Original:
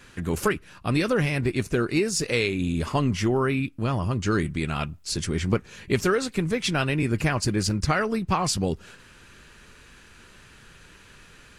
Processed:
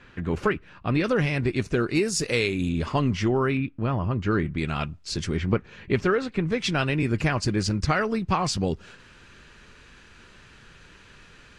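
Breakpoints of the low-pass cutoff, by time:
3 kHz
from 1.04 s 5.8 kHz
from 1.95 s 11 kHz
from 2.69 s 5.1 kHz
from 3.57 s 2.4 kHz
from 4.58 s 5.7 kHz
from 5.37 s 3 kHz
from 6.52 s 6.2 kHz

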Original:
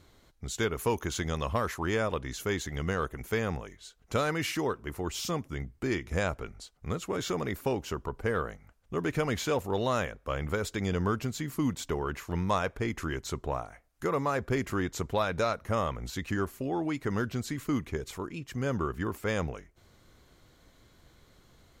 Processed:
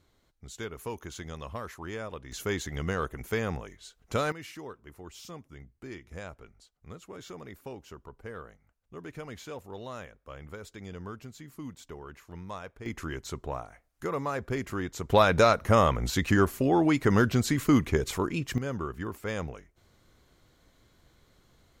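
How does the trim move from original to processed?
-8.5 dB
from 2.32 s 0 dB
from 4.32 s -12 dB
from 12.86 s -2.5 dB
from 15.10 s +8 dB
from 18.58 s -3 dB

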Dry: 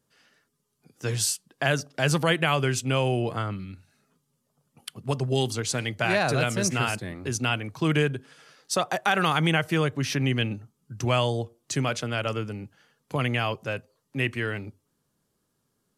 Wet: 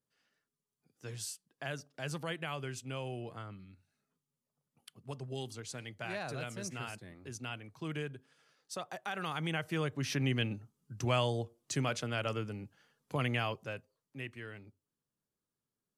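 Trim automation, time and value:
9.12 s -16 dB
10.18 s -7 dB
13.38 s -7 dB
14.28 s -17 dB

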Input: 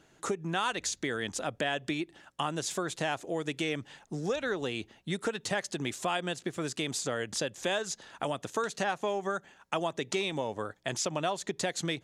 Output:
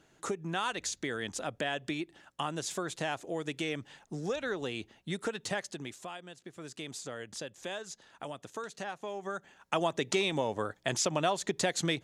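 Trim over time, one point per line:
5.53 s -2.5 dB
6.28 s -15 dB
6.83 s -8.5 dB
9.05 s -8.5 dB
9.82 s +2 dB

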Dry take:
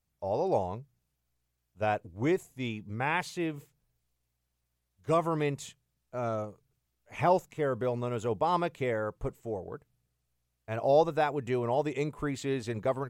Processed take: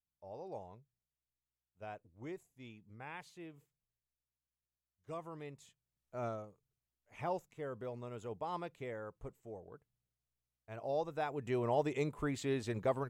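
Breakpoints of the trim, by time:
5.66 s -18 dB
6.24 s -6 dB
6.43 s -13 dB
11.03 s -13 dB
11.62 s -4 dB

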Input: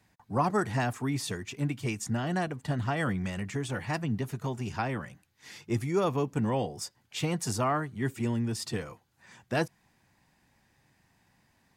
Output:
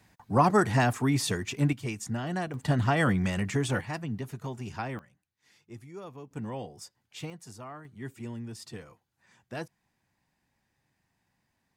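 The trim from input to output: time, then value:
+5 dB
from 1.73 s -2 dB
from 2.54 s +5 dB
from 3.81 s -3.5 dB
from 4.99 s -16 dB
from 6.31 s -8 dB
from 7.30 s -15.5 dB
from 7.85 s -9 dB

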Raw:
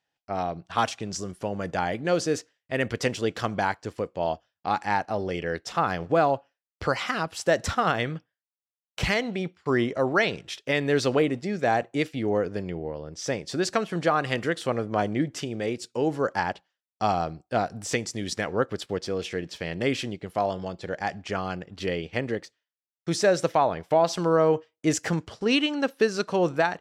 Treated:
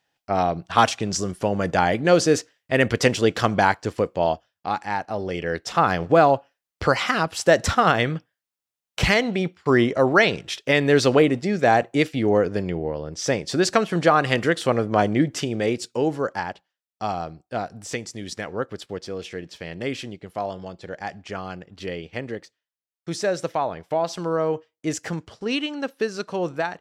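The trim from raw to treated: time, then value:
4.11 s +7.5 dB
4.89 s -1.5 dB
5.84 s +6 dB
15.79 s +6 dB
16.50 s -2.5 dB

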